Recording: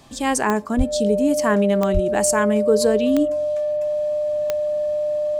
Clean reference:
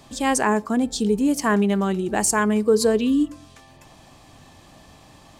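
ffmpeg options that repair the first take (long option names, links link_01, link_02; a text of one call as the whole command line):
ffmpeg -i in.wav -filter_complex "[0:a]adeclick=threshold=4,bandreject=frequency=600:width=30,asplit=3[link_01][link_02][link_03];[link_01]afade=type=out:start_time=0.77:duration=0.02[link_04];[link_02]highpass=frequency=140:width=0.5412,highpass=frequency=140:width=1.3066,afade=type=in:start_time=0.77:duration=0.02,afade=type=out:start_time=0.89:duration=0.02[link_05];[link_03]afade=type=in:start_time=0.89:duration=0.02[link_06];[link_04][link_05][link_06]amix=inputs=3:normalize=0,asplit=3[link_07][link_08][link_09];[link_07]afade=type=out:start_time=1.93:duration=0.02[link_10];[link_08]highpass=frequency=140:width=0.5412,highpass=frequency=140:width=1.3066,afade=type=in:start_time=1.93:duration=0.02,afade=type=out:start_time=2.05:duration=0.02[link_11];[link_09]afade=type=in:start_time=2.05:duration=0.02[link_12];[link_10][link_11][link_12]amix=inputs=3:normalize=0" out.wav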